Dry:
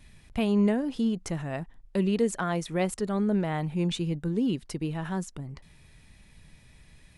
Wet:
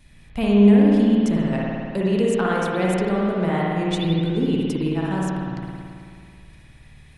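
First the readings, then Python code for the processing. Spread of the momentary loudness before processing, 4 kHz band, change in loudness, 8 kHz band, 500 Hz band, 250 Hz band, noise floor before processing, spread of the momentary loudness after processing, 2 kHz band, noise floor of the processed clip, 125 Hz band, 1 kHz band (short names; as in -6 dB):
11 LU, +6.5 dB, +8.5 dB, +1.0 dB, +8.5 dB, +9.0 dB, -56 dBFS, 14 LU, +8.5 dB, -48 dBFS, +8.0 dB, +8.5 dB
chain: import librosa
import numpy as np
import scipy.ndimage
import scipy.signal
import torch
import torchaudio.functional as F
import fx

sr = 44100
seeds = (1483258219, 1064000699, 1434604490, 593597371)

p1 = fx.level_steps(x, sr, step_db=16)
p2 = x + (p1 * librosa.db_to_amplitude(1.5))
p3 = fx.rev_spring(p2, sr, rt60_s=2.3, pass_ms=(54,), chirp_ms=55, drr_db=-4.5)
y = p3 * librosa.db_to_amplitude(-2.0)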